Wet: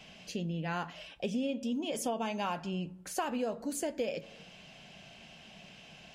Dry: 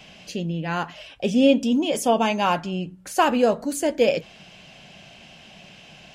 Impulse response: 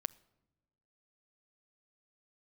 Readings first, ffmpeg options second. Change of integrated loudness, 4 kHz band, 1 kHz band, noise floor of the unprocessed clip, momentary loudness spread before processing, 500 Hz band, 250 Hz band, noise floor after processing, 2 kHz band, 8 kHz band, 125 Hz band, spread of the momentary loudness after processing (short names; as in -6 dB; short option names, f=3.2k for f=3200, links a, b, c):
-13.5 dB, -12.5 dB, -14.0 dB, -48 dBFS, 12 LU, -14.5 dB, -13.0 dB, -54 dBFS, -13.0 dB, -8.5 dB, -9.0 dB, 17 LU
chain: -filter_complex "[1:a]atrim=start_sample=2205,asetrate=66150,aresample=44100[a];[0:a][a]afir=irnorm=-1:irlink=0,acompressor=threshold=-29dB:ratio=6,volume=-2dB"